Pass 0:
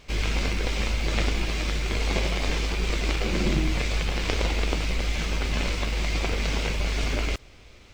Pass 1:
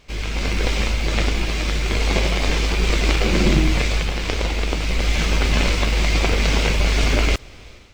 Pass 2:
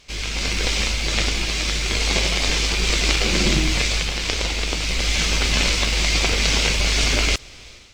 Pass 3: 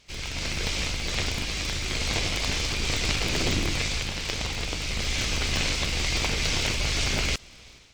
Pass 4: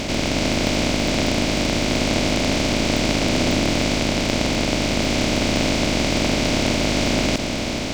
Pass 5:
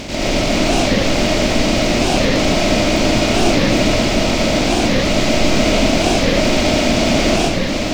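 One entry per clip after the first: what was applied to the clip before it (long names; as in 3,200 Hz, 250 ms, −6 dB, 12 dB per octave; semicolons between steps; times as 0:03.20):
automatic gain control gain up to 11.5 dB; level −1 dB
parametric band 6,100 Hz +11.5 dB 2.7 octaves; level −4 dB
sub-harmonics by changed cycles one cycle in 3, inverted; level −7 dB
compressor on every frequency bin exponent 0.2; hollow resonant body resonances 250/590 Hz, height 12 dB, ringing for 20 ms; level −3.5 dB
comb and all-pass reverb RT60 0.85 s, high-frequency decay 0.4×, pre-delay 80 ms, DRR −7 dB; wow of a warped record 45 rpm, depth 250 cents; level −2.5 dB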